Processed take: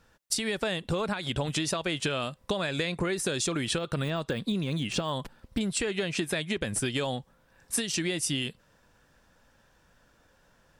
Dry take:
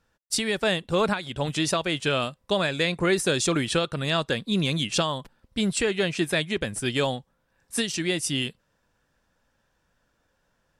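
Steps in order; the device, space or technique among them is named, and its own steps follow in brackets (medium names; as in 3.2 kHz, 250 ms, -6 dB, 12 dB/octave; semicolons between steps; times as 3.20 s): 3.78–5.61 s: de-esser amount 95%; serial compression, leveller first (compression 2.5:1, threshold -28 dBFS, peak gain reduction 7 dB; compression, threshold -34 dBFS, peak gain reduction 9.5 dB); trim +7.5 dB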